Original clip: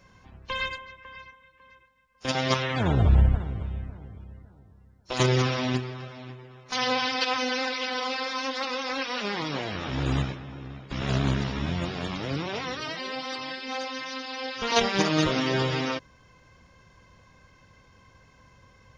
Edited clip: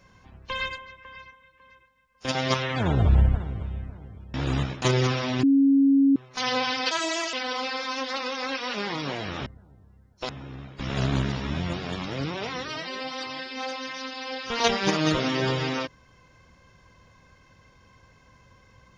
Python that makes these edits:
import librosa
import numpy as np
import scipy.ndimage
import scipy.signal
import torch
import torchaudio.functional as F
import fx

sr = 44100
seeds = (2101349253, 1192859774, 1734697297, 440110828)

y = fx.edit(x, sr, fx.swap(start_s=4.34, length_s=0.83, other_s=9.93, other_length_s=0.48),
    fx.bleep(start_s=5.78, length_s=0.73, hz=275.0, db=-15.0),
    fx.speed_span(start_s=7.26, length_s=0.54, speed=1.28), tone=tone)